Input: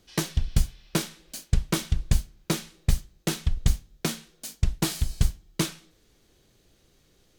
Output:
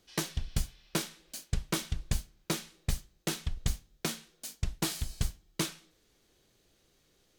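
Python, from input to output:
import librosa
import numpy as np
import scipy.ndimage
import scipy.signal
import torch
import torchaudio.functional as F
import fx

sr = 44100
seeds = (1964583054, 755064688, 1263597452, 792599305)

y = fx.low_shelf(x, sr, hz=250.0, db=-6.0)
y = y * 10.0 ** (-4.0 / 20.0)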